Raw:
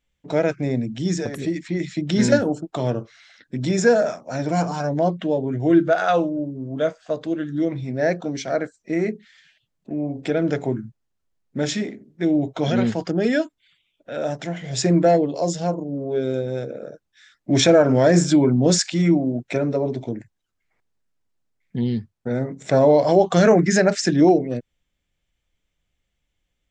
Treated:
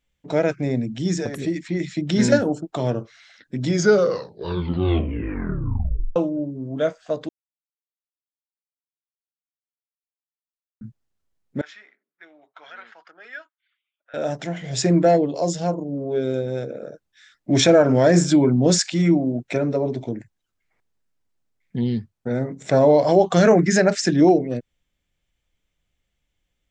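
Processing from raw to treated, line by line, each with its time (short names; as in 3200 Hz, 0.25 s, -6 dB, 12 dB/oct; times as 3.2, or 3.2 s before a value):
3.62 tape stop 2.54 s
7.29–10.81 mute
11.61–14.14 ladder band-pass 1600 Hz, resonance 45%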